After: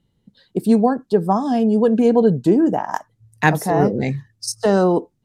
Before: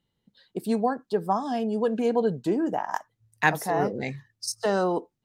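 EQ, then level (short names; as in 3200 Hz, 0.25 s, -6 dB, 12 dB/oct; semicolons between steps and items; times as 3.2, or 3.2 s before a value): LPF 12000 Hz 12 dB/oct; low shelf 490 Hz +11.5 dB; high shelf 6800 Hz +6.5 dB; +2.5 dB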